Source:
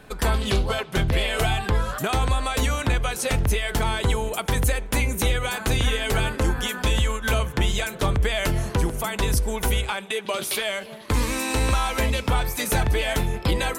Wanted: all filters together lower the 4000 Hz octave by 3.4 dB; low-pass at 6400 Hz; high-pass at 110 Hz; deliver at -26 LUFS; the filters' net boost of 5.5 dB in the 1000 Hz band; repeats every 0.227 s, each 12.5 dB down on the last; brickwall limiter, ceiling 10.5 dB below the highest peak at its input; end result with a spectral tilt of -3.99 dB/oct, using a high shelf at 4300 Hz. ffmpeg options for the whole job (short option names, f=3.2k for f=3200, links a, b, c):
-af "highpass=110,lowpass=6.4k,equalizer=f=1k:t=o:g=7,equalizer=f=4k:t=o:g=-8.5,highshelf=f=4.3k:g=7.5,alimiter=limit=-18dB:level=0:latency=1,aecho=1:1:227|454|681:0.237|0.0569|0.0137,volume=2dB"